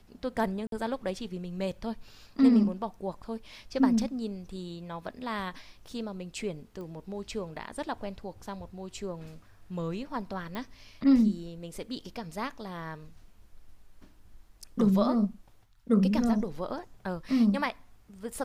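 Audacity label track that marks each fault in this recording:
0.670000	0.720000	drop-out 52 ms
6.810000	6.810000	click −32 dBFS
10.550000	10.550000	click −24 dBFS

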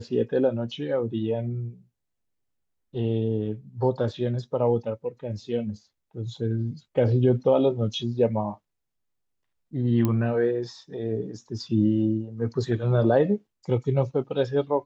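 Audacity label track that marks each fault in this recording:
10.050000	10.050000	click −12 dBFS

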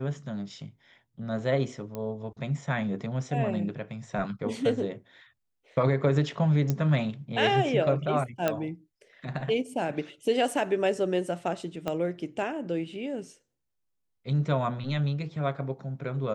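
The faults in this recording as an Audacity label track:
1.950000	1.950000	click −22 dBFS
6.700000	6.700000	click −14 dBFS
8.480000	8.480000	click −12 dBFS
11.880000	11.880000	click −17 dBFS

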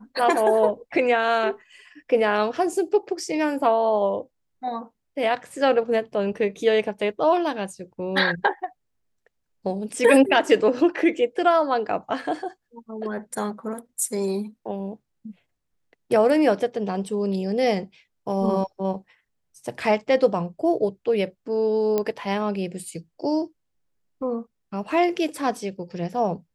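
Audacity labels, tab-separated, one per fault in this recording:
21.980000	21.980000	click −11 dBFS

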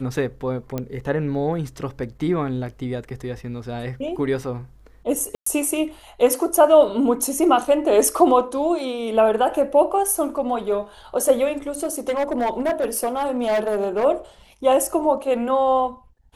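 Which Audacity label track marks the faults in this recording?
0.780000	0.780000	click −13 dBFS
5.350000	5.460000	drop-out 114 ms
11.750000	14.050000	clipping −17 dBFS

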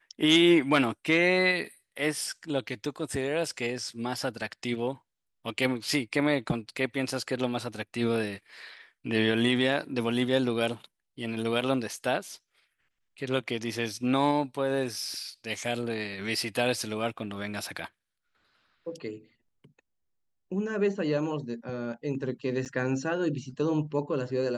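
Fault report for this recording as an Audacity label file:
22.650000	22.660000	drop-out 8.1 ms

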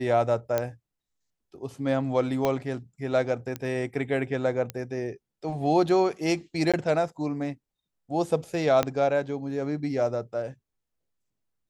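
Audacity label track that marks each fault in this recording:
0.580000	0.580000	click −12 dBFS
2.450000	2.450000	click −12 dBFS
3.560000	3.560000	click −17 dBFS
4.700000	4.700000	click −16 dBFS
6.720000	6.740000	drop-out 16 ms
8.830000	8.830000	click −10 dBFS

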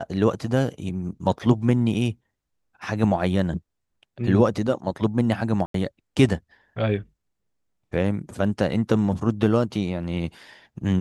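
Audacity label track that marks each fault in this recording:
1.390000	1.400000	drop-out 5.8 ms
5.660000	5.740000	drop-out 83 ms

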